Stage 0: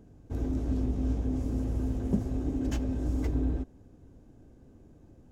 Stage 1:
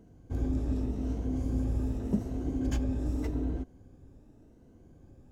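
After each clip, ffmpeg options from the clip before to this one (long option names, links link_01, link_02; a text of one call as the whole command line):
ffmpeg -i in.wav -af "afftfilt=real='re*pow(10,6/40*sin(2*PI*(1.9*log(max(b,1)*sr/1024/100)/log(2)-(0.86)*(pts-256)/sr)))':imag='im*pow(10,6/40*sin(2*PI*(1.9*log(max(b,1)*sr/1024/100)/log(2)-(0.86)*(pts-256)/sr)))':win_size=1024:overlap=0.75,volume=-1.5dB" out.wav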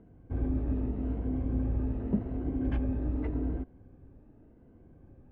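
ffmpeg -i in.wav -af "lowpass=frequency=2500:width=0.5412,lowpass=frequency=2500:width=1.3066" out.wav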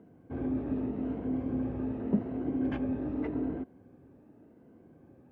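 ffmpeg -i in.wav -af "highpass=170,volume=3dB" out.wav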